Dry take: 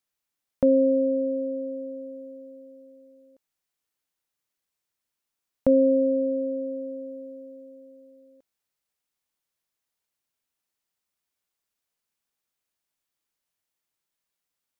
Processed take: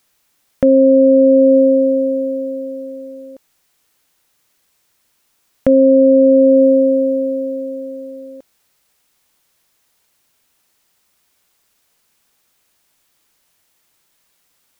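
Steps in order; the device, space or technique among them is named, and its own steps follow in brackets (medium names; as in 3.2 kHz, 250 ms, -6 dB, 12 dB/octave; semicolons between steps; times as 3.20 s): loud club master (compression 2:1, threshold -25 dBFS, peak gain reduction 6 dB; hard clipper -15 dBFS, distortion -33 dB; loudness maximiser +24.5 dB); trim -3 dB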